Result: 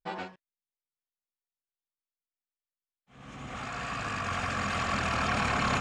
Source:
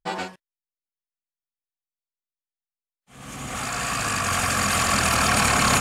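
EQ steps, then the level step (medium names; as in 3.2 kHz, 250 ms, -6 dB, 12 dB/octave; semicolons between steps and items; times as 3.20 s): distance through air 150 m; band-stop 4.6 kHz, Q 29; -7.0 dB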